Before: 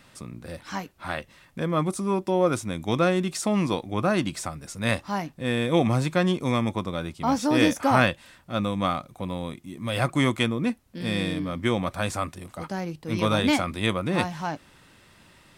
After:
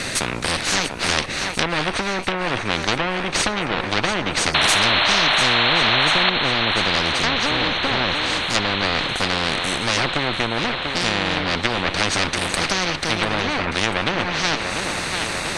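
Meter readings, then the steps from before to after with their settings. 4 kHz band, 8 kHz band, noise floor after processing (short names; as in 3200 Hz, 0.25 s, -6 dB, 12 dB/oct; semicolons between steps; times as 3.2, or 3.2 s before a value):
+15.5 dB, +12.0 dB, -27 dBFS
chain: minimum comb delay 0.47 ms; treble ducked by the level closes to 960 Hz, closed at -21.5 dBFS; LPF 10000 Hz 24 dB/oct; dynamic EQ 7700 Hz, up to -5 dB, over -60 dBFS, Q 1.1; compressor, threshold -25 dBFS, peak gain reduction 8 dB; painted sound noise, 4.54–6.3, 580–4300 Hz -23 dBFS; on a send: thinning echo 0.692 s, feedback 63%, high-pass 420 Hz, level -14.5 dB; on the sum: spectral compressor 4:1; gain +8 dB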